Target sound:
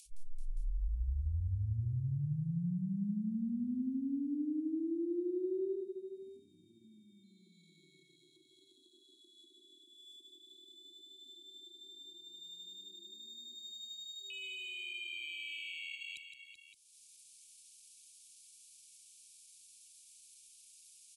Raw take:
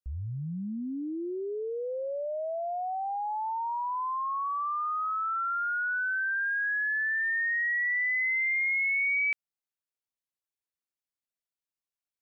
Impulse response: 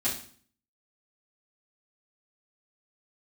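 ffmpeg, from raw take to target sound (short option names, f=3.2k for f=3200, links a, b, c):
-filter_complex "[0:a]asetrate=25442,aresample=44100,asplit=2[a][b];[1:a]atrim=start_sample=2205,atrim=end_sample=4410,adelay=21[c];[b][c]afir=irnorm=-1:irlink=0,volume=-30dB[d];[a][d]amix=inputs=2:normalize=0,asetrate=38170,aresample=44100,atempo=1.15535,afreqshift=-33,afwtdn=0.0141,afftfilt=real='re*(1-between(b*sr/4096,390,2200))':imag='im*(1-between(b*sr/4096,390,2200))':win_size=4096:overlap=0.75,acompressor=mode=upward:threshold=-56dB:ratio=2.5,highshelf=f=2.1k:g=8.5,aecho=1:1:165|385|570:0.335|0.299|0.224,crystalizer=i=4:c=0,equalizer=f=430:w=0.37:g=-5"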